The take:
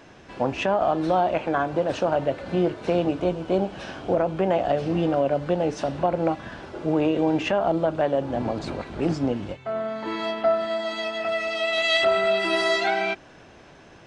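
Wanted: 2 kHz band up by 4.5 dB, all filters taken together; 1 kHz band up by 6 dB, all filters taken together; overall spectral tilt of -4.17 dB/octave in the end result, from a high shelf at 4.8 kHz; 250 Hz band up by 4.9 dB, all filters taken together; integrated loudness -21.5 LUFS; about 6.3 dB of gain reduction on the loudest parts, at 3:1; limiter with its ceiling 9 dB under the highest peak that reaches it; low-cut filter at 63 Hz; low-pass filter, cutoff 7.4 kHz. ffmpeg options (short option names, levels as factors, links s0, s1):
-af "highpass=63,lowpass=7400,equalizer=f=250:t=o:g=6.5,equalizer=f=1000:t=o:g=8,equalizer=f=2000:t=o:g=4.5,highshelf=f=4800:g=-7,acompressor=threshold=0.0891:ratio=3,volume=1.88,alimiter=limit=0.237:level=0:latency=1"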